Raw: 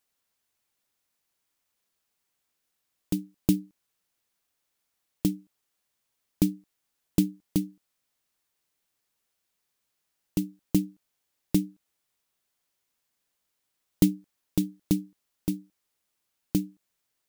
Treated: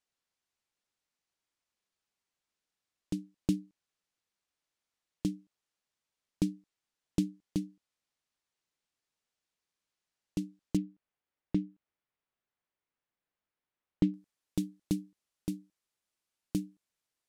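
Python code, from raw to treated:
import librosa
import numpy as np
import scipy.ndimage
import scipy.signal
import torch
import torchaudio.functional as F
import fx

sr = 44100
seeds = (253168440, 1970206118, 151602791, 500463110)

y = fx.lowpass(x, sr, hz=fx.steps((0.0, 7600.0), (10.77, 2400.0), (14.14, 11000.0)), slope=12)
y = y * librosa.db_to_amplitude(-6.5)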